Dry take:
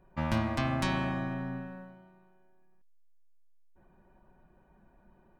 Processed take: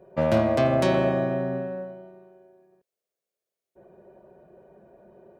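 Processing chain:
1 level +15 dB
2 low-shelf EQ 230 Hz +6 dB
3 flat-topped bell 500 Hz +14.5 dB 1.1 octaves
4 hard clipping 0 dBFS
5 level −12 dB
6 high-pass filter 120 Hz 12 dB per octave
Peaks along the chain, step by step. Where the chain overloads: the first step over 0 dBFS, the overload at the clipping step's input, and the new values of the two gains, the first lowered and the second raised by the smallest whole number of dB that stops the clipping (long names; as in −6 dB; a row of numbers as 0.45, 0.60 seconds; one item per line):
−0.5, +2.5, +4.5, 0.0, −12.0, −9.5 dBFS
step 2, 4.5 dB
step 1 +10 dB, step 5 −7 dB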